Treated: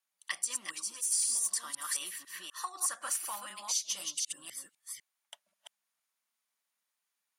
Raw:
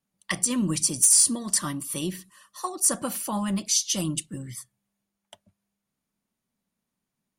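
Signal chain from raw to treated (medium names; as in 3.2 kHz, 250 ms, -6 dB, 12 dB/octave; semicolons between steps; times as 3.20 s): chunks repeated in reverse 250 ms, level -3 dB; 1.84–3.36 s: peaking EQ 1.6 kHz +7.5 dB 1.4 oct; compression 2:1, threshold -37 dBFS, peak gain reduction 12.5 dB; high-pass 1.1 kHz 12 dB/octave; 0.72–1.12 s: three-phase chorus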